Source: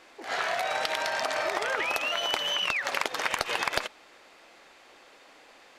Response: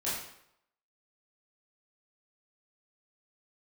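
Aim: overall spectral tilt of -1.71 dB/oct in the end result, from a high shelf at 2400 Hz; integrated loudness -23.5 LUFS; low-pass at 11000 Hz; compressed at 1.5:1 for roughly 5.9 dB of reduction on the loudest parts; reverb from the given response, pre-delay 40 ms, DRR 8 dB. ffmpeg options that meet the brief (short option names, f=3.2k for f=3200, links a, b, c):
-filter_complex "[0:a]lowpass=11k,highshelf=f=2.4k:g=-8.5,acompressor=threshold=-42dB:ratio=1.5,asplit=2[a][b];[1:a]atrim=start_sample=2205,adelay=40[c];[b][c]afir=irnorm=-1:irlink=0,volume=-13.5dB[d];[a][d]amix=inputs=2:normalize=0,volume=12.5dB"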